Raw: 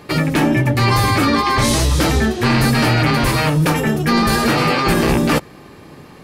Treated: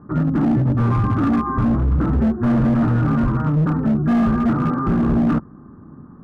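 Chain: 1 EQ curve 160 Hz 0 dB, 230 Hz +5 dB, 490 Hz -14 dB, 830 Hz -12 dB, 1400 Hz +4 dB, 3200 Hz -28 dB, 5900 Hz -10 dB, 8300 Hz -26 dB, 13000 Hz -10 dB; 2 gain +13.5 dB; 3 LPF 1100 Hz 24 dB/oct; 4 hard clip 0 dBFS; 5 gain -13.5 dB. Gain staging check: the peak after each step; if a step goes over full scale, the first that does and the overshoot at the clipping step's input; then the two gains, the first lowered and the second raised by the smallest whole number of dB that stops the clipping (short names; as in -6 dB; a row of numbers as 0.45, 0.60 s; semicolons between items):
-3.5, +10.0, +8.5, 0.0, -13.5 dBFS; step 2, 8.5 dB; step 2 +4.5 dB, step 5 -4.5 dB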